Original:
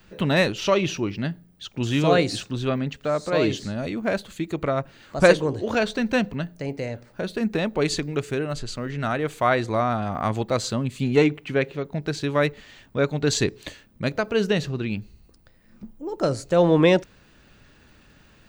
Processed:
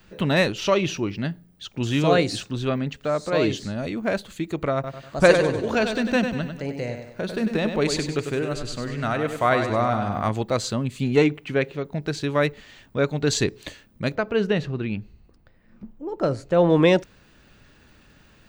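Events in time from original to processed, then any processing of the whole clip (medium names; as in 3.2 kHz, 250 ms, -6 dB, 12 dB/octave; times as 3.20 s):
4.74–10.29 s: feedback delay 97 ms, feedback 44%, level -7.5 dB
14.15–16.70 s: tone controls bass 0 dB, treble -12 dB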